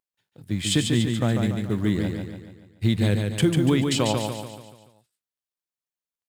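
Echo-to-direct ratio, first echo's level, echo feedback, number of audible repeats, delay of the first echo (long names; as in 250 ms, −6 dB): −3.5 dB, −4.5 dB, 49%, 5, 144 ms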